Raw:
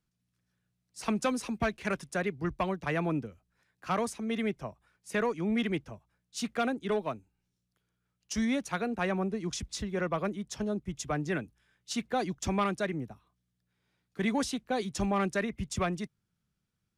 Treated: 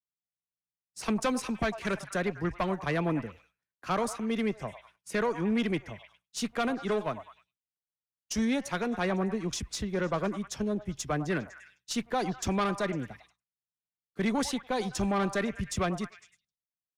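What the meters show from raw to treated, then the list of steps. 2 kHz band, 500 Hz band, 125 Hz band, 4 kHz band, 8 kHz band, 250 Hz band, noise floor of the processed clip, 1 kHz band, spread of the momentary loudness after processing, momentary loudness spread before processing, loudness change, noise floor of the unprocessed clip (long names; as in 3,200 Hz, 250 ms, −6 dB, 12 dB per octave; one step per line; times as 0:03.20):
+0.5 dB, +1.5 dB, +1.5 dB, +2.0 dB, +2.0 dB, +1.5 dB, below −85 dBFS, +1.0 dB, 11 LU, 9 LU, +1.0 dB, −82 dBFS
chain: echo through a band-pass that steps 101 ms, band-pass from 840 Hz, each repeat 0.7 octaves, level −10.5 dB
tube saturation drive 24 dB, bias 0.4
downward expander −58 dBFS
level +3.5 dB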